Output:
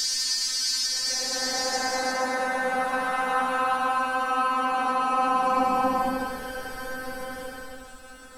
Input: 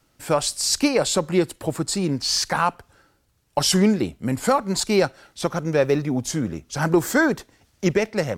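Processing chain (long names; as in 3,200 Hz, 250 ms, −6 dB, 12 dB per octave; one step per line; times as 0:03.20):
every bin's largest magnitude spread in time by 120 ms
phases set to zero 258 Hz
reversed playback
downward compressor 5 to 1, threshold −30 dBFS, peak gain reduction 18.5 dB
reversed playback
extreme stretch with random phases 15×, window 0.10 s, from 0:02.36
level +7.5 dB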